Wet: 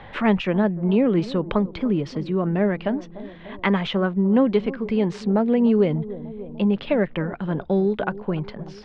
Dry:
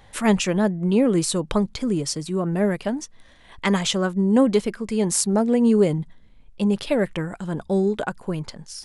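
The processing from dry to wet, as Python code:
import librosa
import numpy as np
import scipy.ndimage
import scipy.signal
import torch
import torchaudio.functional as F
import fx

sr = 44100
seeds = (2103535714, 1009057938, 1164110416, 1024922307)

p1 = scipy.signal.sosfilt(scipy.signal.butter(4, 3300.0, 'lowpass', fs=sr, output='sos'), x)
p2 = p1 + fx.echo_bbd(p1, sr, ms=296, stages=2048, feedback_pct=51, wet_db=-18.0, dry=0)
y = fx.band_squash(p2, sr, depth_pct=40)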